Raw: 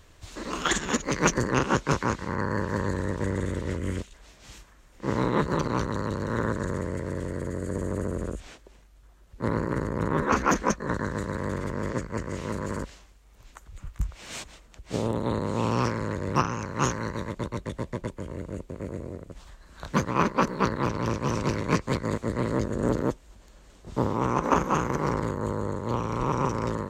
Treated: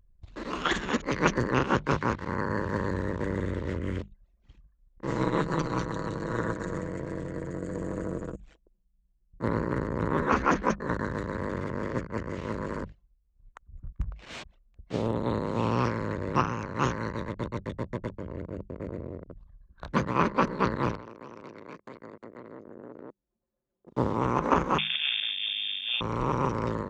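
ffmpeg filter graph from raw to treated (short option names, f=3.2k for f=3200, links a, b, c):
-filter_complex "[0:a]asettb=1/sr,asplit=3[a][b][c];[a]atrim=end=5.074[d];[b]atrim=start=5.07:end=9.43,asetpts=PTS-STARTPTS,afade=t=in:d=0.004:c=qsin,afade=t=out:st=4.356:d=0.004:c=qsin,equalizer=f=7.6k:w=1.4:g=13,tremolo=f=140:d=0.519,aecho=1:1:6.2:0.48,atrim=end_sample=192276[e];[c]atrim=start=9.426[f];[d][e]acrossfade=d=0.004:c1=hsin:c2=qsin[g];[g][f]acrossfade=d=0.004:c1=qsin:c2=hsin,asettb=1/sr,asplit=3[h][i][j];[h]atrim=end=20.954[k];[i]atrim=start=20.95:end=23.97,asetpts=PTS-STARTPTS,afade=t=in:d=0.004:c=qsin,afade=t=out:st=3.016:d=0.004:c=qsin,highshelf=f=6.4k:g=5.5,acompressor=threshold=-36dB:ratio=10:attack=3.2:release=140:knee=1:detection=peak,highpass=230[l];[j]atrim=start=23.966[m];[k][l]acrossfade=d=0.004:c1=hsin:c2=qsin[n];[n][m]acrossfade=d=0.004:c1=qsin:c2=hsin,asettb=1/sr,asplit=3[o][p][q];[o]atrim=end=24.784[r];[p]atrim=start=24.78:end=26.01,asetpts=PTS-STARTPTS,afade=t=in:d=0.004:c=qsin,afade=t=out:st=1.226:d=0.004:c=qsin,lowpass=f=3.1k:t=q:w=0.5098,lowpass=f=3.1k:t=q:w=0.6013,lowpass=f=3.1k:t=q:w=0.9,lowpass=f=3.1k:t=q:w=2.563,afreqshift=-3700,aeval=exprs='sgn(val(0))*max(abs(val(0))-0.00112,0)':c=same,aeval=exprs='val(0)+0.00282*(sin(2*PI*50*n/s)+sin(2*PI*2*50*n/s)/2+sin(2*PI*3*50*n/s)/3+sin(2*PI*4*50*n/s)/4+sin(2*PI*5*50*n/s)/5)':c=same[s];[q]atrim=start=26.006[t];[r][s]acrossfade=d=0.004:c1=hsin:c2=qsin[u];[u][t]acrossfade=d=0.004:c1=qsin:c2=hsin,acrossover=split=4800[v][w];[w]acompressor=threshold=-58dB:ratio=4:attack=1:release=60[x];[v][x]amix=inputs=2:normalize=0,bandreject=f=50:t=h:w=6,bandreject=f=100:t=h:w=6,bandreject=f=150:t=h:w=6,bandreject=f=200:t=h:w=6,anlmdn=0.1,volume=-1dB"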